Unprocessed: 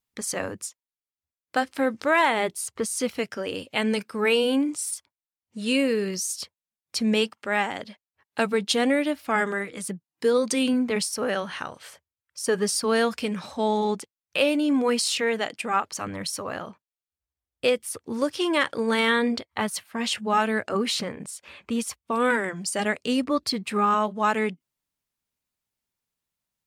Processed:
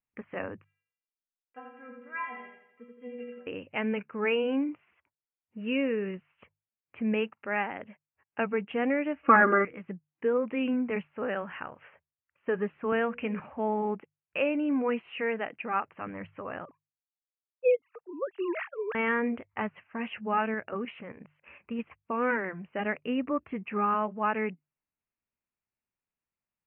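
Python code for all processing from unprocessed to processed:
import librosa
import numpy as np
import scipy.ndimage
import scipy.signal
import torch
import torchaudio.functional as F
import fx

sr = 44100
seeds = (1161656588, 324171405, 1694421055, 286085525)

y = fx.chain(x, sr, fx.high_shelf(hz=2400.0, db=8.0),
    fx.stiff_resonator(f0_hz=240.0, decay_s=0.58, stiffness=0.008),
    fx.echo_feedback(ms=84, feedback_pct=48, wet_db=-4.0), at=(0.64, 3.47))
y = fx.chain(y, sr, fx.comb(ms=3.6, depth=0.89),
    fx.small_body(hz=(390.0, 1200.0), ring_ms=20, db=18), at=(9.23, 9.65))
y = fx.chain(y, sr, fx.high_shelf(hz=5400.0, db=8.5),
    fx.hum_notches(base_hz=60, count=9),
    fx.band_squash(depth_pct=40), at=(12.92, 13.4))
y = fx.chain(y, sr, fx.sine_speech(),
    fx.env_lowpass(base_hz=1100.0, full_db=-21.5), at=(16.65, 18.95))
y = fx.chain(y, sr, fx.high_shelf(hz=3400.0, db=5.0),
    fx.level_steps(step_db=9), at=(20.54, 21.79))
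y = scipy.signal.sosfilt(scipy.signal.butter(16, 2800.0, 'lowpass', fs=sr, output='sos'), y)
y = fx.hum_notches(y, sr, base_hz=50, count=3)
y = y * 10.0 ** (-5.5 / 20.0)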